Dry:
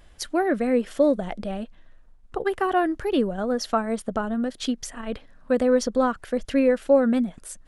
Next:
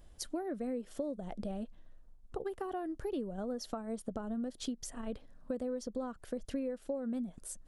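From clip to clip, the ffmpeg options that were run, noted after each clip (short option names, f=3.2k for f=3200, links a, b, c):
-af "acompressor=threshold=-29dB:ratio=6,equalizer=f=2k:w=0.61:g=-10,volume=-4.5dB"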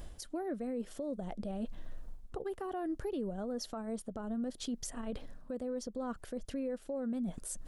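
-af "areverse,acompressor=threshold=-47dB:ratio=5,areverse,alimiter=level_in=19.5dB:limit=-24dB:level=0:latency=1:release=197,volume=-19.5dB,volume=13.5dB"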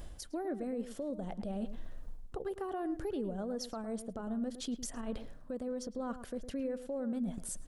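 -filter_complex "[0:a]asplit=2[a][b];[b]adelay=108,lowpass=f=1.8k:p=1,volume=-11dB,asplit=2[c][d];[d]adelay=108,lowpass=f=1.8k:p=1,volume=0.16[e];[a][c][e]amix=inputs=3:normalize=0"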